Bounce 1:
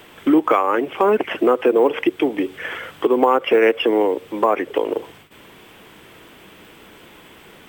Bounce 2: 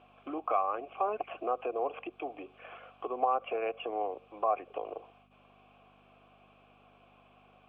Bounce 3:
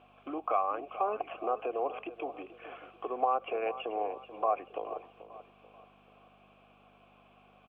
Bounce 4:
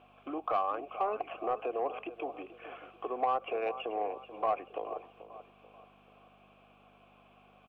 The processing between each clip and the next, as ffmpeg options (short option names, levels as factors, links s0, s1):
-filter_complex "[0:a]acrossover=split=3900[s0][s1];[s1]acompressor=threshold=0.00141:ratio=4:attack=1:release=60[s2];[s0][s2]amix=inputs=2:normalize=0,aeval=exprs='val(0)+0.0355*(sin(2*PI*50*n/s)+sin(2*PI*2*50*n/s)/2+sin(2*PI*3*50*n/s)/3+sin(2*PI*4*50*n/s)/4+sin(2*PI*5*50*n/s)/5)':c=same,asplit=3[s3][s4][s5];[s3]bandpass=f=730:t=q:w=8,volume=1[s6];[s4]bandpass=f=1090:t=q:w=8,volume=0.501[s7];[s5]bandpass=f=2440:t=q:w=8,volume=0.355[s8];[s6][s7][s8]amix=inputs=3:normalize=0,volume=0.596"
-af "aecho=1:1:435|870|1305|1740:0.2|0.0778|0.0303|0.0118"
-af "asoftclip=type=tanh:threshold=0.1"